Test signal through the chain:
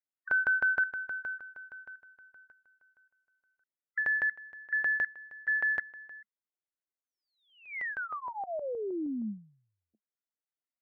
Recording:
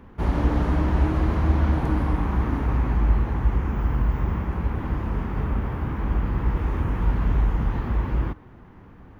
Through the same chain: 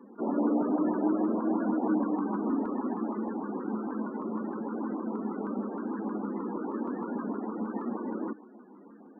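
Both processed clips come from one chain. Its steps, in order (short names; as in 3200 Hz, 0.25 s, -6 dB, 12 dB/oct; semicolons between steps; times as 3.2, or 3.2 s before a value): Chebyshev band-pass 210–2100 Hz, order 5; loudest bins only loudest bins 32; LFO notch saw up 6.4 Hz 630–1700 Hz; gain +2 dB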